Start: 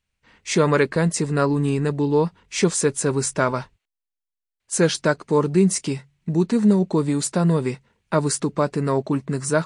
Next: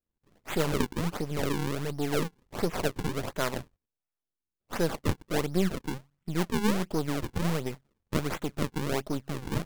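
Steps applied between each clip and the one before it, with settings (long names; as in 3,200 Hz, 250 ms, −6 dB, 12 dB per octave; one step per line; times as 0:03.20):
gain on one half-wave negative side −12 dB
sample-and-hold swept by an LFO 40×, swing 160% 1.4 Hz
level −6.5 dB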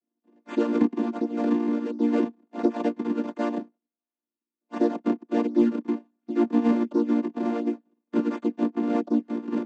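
channel vocoder with a chord as carrier major triad, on A#3
spectral tilt −1.5 dB per octave
in parallel at −11 dB: sine wavefolder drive 4 dB, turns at −10.5 dBFS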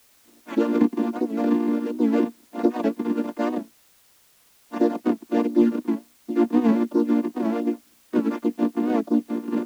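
in parallel at −10 dB: bit-depth reduction 8 bits, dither triangular
on the sum: wow of a warped record 78 rpm, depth 100 cents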